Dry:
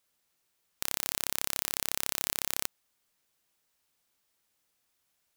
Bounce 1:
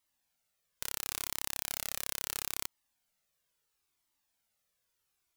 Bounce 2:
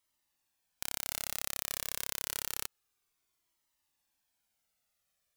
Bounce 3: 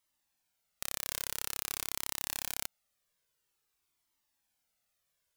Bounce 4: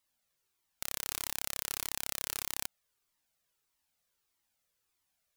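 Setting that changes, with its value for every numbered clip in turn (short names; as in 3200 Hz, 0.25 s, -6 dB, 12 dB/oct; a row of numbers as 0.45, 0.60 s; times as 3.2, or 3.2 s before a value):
cascading flanger, rate: 0.74, 0.28, 0.49, 1.6 Hz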